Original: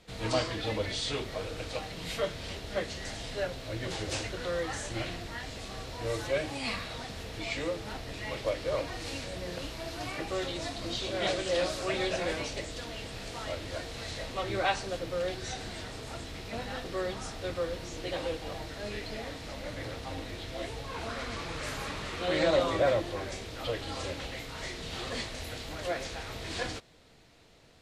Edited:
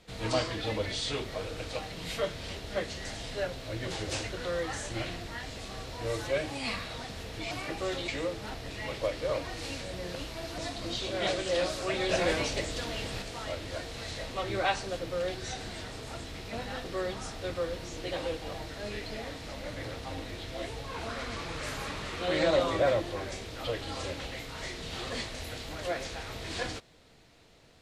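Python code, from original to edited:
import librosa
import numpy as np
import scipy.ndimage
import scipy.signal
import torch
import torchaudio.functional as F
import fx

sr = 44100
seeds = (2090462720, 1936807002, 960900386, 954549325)

y = fx.edit(x, sr, fx.move(start_s=10.01, length_s=0.57, to_s=7.51),
    fx.clip_gain(start_s=12.09, length_s=1.13, db=4.5), tone=tone)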